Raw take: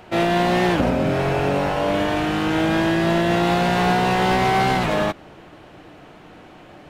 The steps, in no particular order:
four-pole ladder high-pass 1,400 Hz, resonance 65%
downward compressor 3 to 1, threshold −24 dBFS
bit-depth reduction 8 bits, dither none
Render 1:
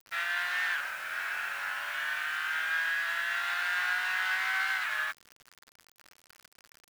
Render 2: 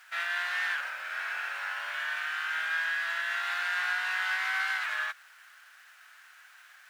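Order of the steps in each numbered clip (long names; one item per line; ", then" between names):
four-pole ladder high-pass, then downward compressor, then bit-depth reduction
bit-depth reduction, then four-pole ladder high-pass, then downward compressor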